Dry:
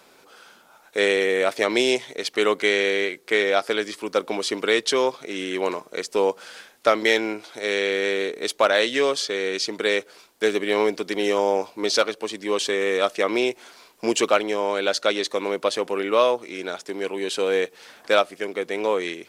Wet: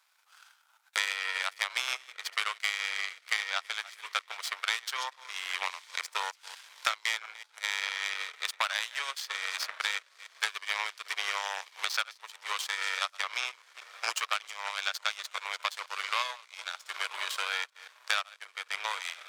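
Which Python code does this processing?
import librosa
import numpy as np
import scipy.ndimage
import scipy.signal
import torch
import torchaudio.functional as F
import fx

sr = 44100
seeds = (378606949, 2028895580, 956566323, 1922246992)

y = fx.reverse_delay(x, sr, ms=177, wet_db=-12.0)
y = fx.echo_diffused(y, sr, ms=1010, feedback_pct=42, wet_db=-15.0)
y = fx.power_curve(y, sr, exponent=2.0)
y = scipy.signal.sosfilt(scipy.signal.butter(4, 960.0, 'highpass', fs=sr, output='sos'), y)
y = fx.band_squash(y, sr, depth_pct=100)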